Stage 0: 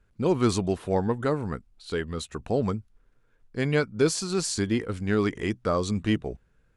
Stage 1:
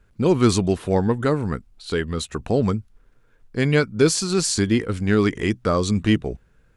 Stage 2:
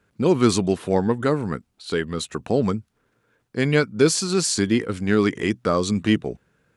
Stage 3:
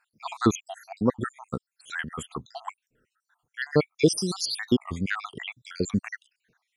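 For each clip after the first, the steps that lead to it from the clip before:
dynamic equaliser 760 Hz, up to −4 dB, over −37 dBFS, Q 0.87; level +7 dB
high-pass filter 130 Hz 12 dB per octave
time-frequency cells dropped at random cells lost 71%; wow of a warped record 33 1/3 rpm, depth 160 cents

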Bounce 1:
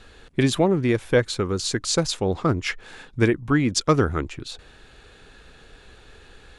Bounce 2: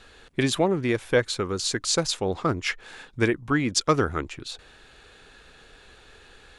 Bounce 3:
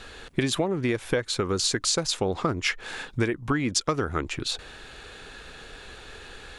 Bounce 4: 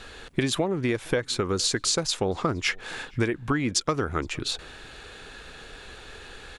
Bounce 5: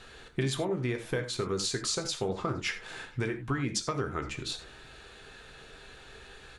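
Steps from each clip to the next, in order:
low-shelf EQ 360 Hz −6.5 dB
downward compressor 12 to 1, threshold −29 dBFS, peak gain reduction 14.5 dB; level +7.5 dB
slap from a distant wall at 80 metres, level −26 dB
convolution reverb, pre-delay 4 ms, DRR 4.5 dB; level −7.5 dB

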